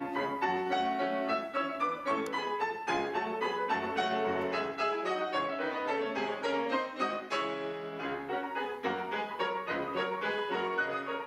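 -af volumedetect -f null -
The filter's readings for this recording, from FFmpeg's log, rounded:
mean_volume: -33.2 dB
max_volume: -17.5 dB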